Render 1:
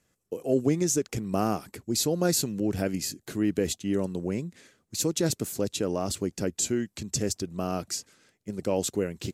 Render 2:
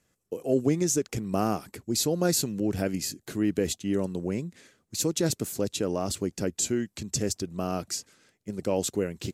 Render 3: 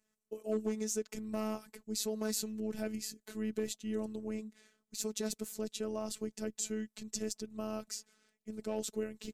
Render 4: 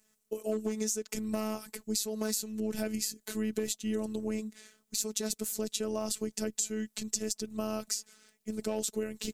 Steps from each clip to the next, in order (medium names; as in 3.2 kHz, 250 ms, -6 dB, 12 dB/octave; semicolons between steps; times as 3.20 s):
no audible change
overload inside the chain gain 16 dB; robot voice 216 Hz; trim -7.5 dB
treble shelf 4.2 kHz +8 dB; compression 6:1, threshold -35 dBFS, peak gain reduction 11.5 dB; trim +7 dB